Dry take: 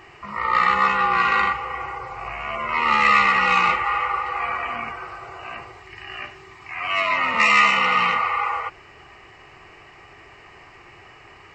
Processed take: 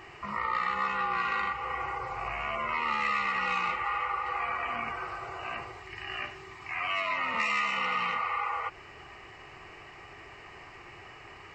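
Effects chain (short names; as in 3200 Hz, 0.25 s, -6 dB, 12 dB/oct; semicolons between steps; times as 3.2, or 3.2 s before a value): compressor 3:1, threshold -28 dBFS, peak gain reduction 12.5 dB; gain -2 dB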